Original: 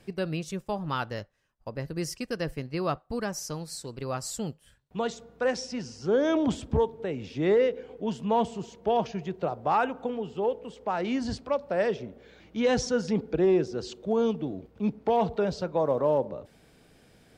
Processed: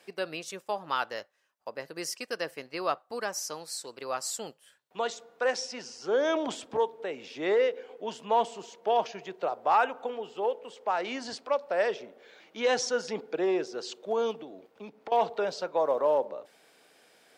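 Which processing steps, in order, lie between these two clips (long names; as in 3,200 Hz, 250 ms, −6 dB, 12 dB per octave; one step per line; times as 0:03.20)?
high-pass filter 530 Hz 12 dB per octave
0:14.39–0:15.12: downward compressor 10 to 1, threshold −42 dBFS, peak gain reduction 18 dB
level +2 dB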